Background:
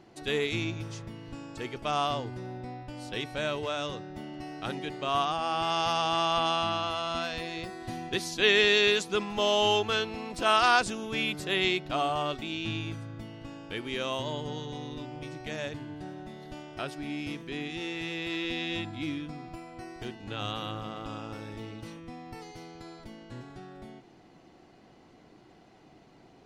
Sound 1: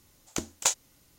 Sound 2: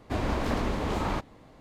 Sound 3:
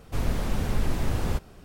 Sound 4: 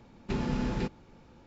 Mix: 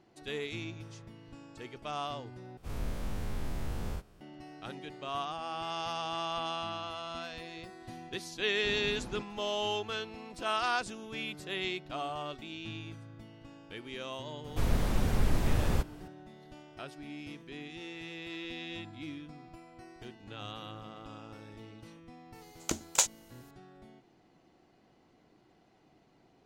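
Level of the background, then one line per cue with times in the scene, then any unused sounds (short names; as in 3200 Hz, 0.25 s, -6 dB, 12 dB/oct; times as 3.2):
background -8.5 dB
2.57 replace with 3 -15 dB + spectral dilation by 0.12 s
8.35 add 4 -11 dB
14.44 add 3 -2 dB
22.33 add 1 -1 dB
not used: 2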